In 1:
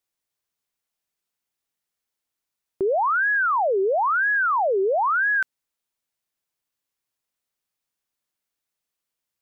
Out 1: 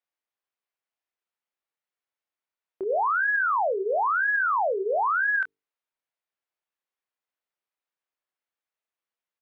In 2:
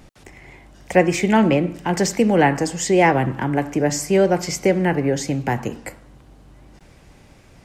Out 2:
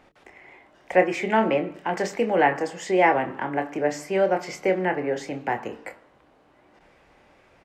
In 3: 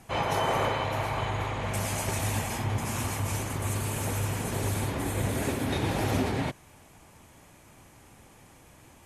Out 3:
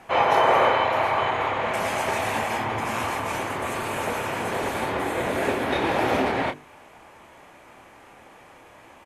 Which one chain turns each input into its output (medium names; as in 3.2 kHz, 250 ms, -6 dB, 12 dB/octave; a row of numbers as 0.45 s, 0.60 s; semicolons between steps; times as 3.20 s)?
tone controls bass -15 dB, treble -15 dB; hum notches 50/100/150/200/250/300/350/400/450 Hz; doubling 27 ms -8.5 dB; normalise loudness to -24 LUFS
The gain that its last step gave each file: -3.0 dB, -2.5 dB, +9.5 dB